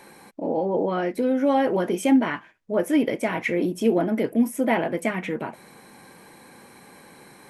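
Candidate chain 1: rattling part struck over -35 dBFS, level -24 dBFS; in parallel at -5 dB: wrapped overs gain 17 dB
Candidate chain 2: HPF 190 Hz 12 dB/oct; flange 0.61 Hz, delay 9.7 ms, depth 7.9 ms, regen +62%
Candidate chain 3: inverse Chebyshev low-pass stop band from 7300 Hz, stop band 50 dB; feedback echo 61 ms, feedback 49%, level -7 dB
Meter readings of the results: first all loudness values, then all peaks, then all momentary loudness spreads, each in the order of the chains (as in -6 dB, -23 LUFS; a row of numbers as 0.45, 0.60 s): -21.5, -28.5, -23.0 LUFS; -7.5, -11.5, -7.5 dBFS; 7, 10, 9 LU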